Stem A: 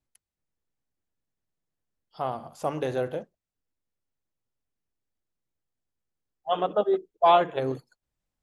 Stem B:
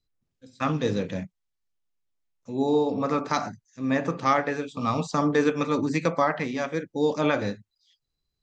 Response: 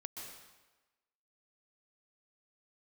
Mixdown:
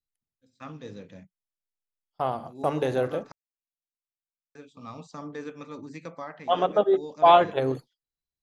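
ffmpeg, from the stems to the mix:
-filter_complex "[0:a]agate=range=-29dB:threshold=-43dB:ratio=16:detection=peak,volume=2.5dB[link_01];[1:a]volume=-15.5dB,asplit=3[link_02][link_03][link_04];[link_02]atrim=end=3.32,asetpts=PTS-STARTPTS,afade=type=out:start_time=3.316:duration=0.004:curve=hsin[link_05];[link_03]atrim=start=3.32:end=4.55,asetpts=PTS-STARTPTS,volume=0[link_06];[link_04]atrim=start=4.55,asetpts=PTS-STARTPTS,afade=type=in:duration=0.004:curve=hsin[link_07];[link_05][link_06][link_07]concat=n=3:v=0:a=1[link_08];[link_01][link_08]amix=inputs=2:normalize=0"

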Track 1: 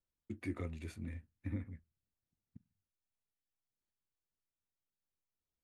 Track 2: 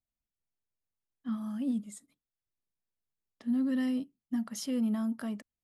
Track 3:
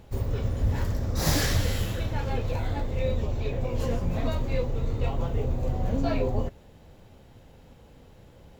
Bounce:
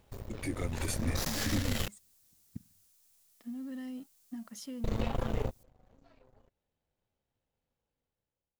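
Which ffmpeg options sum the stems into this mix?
ffmpeg -i stem1.wav -i stem2.wav -i stem3.wav -filter_complex "[0:a]bass=frequency=250:gain=-3,treble=frequency=4000:gain=15,volume=2dB[link_01];[1:a]acompressor=threshold=-32dB:ratio=6,aeval=exprs='sgn(val(0))*max(abs(val(0))-0.00126,0)':channel_layout=same,volume=-6dB,asplit=2[link_02][link_03];[2:a]lowshelf=frequency=490:gain=-6.5,acompressor=threshold=-34dB:ratio=3,aeval=exprs='0.0841*(cos(1*acos(clip(val(0)/0.0841,-1,1)))-cos(1*PI/2))+0.0168*(cos(3*acos(clip(val(0)/0.0841,-1,1)))-cos(3*PI/2))+0.00531*(cos(8*acos(clip(val(0)/0.0841,-1,1)))-cos(8*PI/2))':channel_layout=same,volume=-1.5dB,asplit=3[link_04][link_05][link_06];[link_04]atrim=end=1.88,asetpts=PTS-STARTPTS,afade=type=out:start_time=1.876:duration=0.004:curve=hsin[link_07];[link_05]atrim=start=1.88:end=4.84,asetpts=PTS-STARTPTS,volume=0[link_08];[link_06]atrim=start=4.84,asetpts=PTS-STARTPTS,afade=type=in:duration=0.004:curve=hsin[link_09];[link_07][link_08][link_09]concat=n=3:v=0:a=1[link_10];[link_03]apad=whole_len=379021[link_11];[link_10][link_11]sidechaingate=range=-34dB:threshold=-60dB:ratio=16:detection=peak[link_12];[link_01][link_12]amix=inputs=2:normalize=0,dynaudnorm=framelen=400:gausssize=5:maxgain=13.5dB,alimiter=limit=-20.5dB:level=0:latency=1:release=213,volume=0dB[link_13];[link_02][link_13]amix=inputs=2:normalize=0" out.wav

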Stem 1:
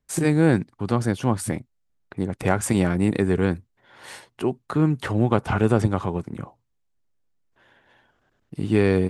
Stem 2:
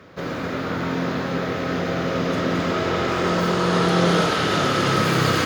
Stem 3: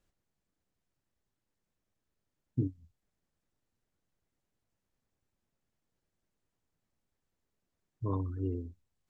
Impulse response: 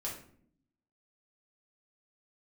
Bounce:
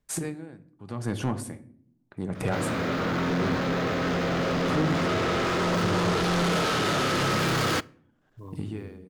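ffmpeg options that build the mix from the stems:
-filter_complex "[0:a]acompressor=threshold=-25dB:ratio=2,aeval=exprs='val(0)*pow(10,-25*(0.5-0.5*cos(2*PI*0.83*n/s))/20)':channel_layout=same,volume=0dB,asplit=2[link_01][link_02];[link_02]volume=-8dB[link_03];[1:a]asoftclip=type=tanh:threshold=-23dB,adelay=2350,volume=1.5dB,asplit=2[link_04][link_05];[link_05]volume=-21dB[link_06];[2:a]acrusher=bits=8:mode=log:mix=0:aa=0.000001,adelay=350,volume=-10dB[link_07];[3:a]atrim=start_sample=2205[link_08];[link_03][link_06]amix=inputs=2:normalize=0[link_09];[link_09][link_08]afir=irnorm=-1:irlink=0[link_10];[link_01][link_04][link_07][link_10]amix=inputs=4:normalize=0,asoftclip=type=tanh:threshold=-18dB"

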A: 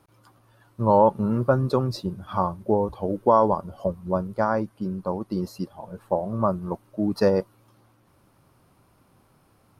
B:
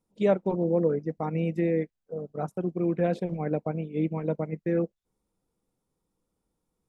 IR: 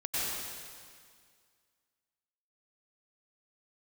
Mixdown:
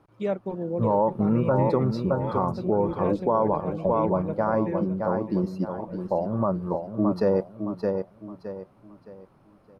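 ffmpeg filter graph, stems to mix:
-filter_complex "[0:a]lowpass=frequency=1300:poles=1,equalizer=frequency=64:width=0.85:gain=-5,volume=2.5dB,asplit=2[link_01][link_02];[link_02]volume=-8dB[link_03];[1:a]agate=range=-33dB:threshold=-44dB:ratio=3:detection=peak,volume=-4.5dB,asplit=2[link_04][link_05];[link_05]volume=-10.5dB[link_06];[link_03][link_06]amix=inputs=2:normalize=0,aecho=0:1:616|1232|1848|2464|3080:1|0.33|0.109|0.0359|0.0119[link_07];[link_01][link_04][link_07]amix=inputs=3:normalize=0,alimiter=limit=-12.5dB:level=0:latency=1:release=42"

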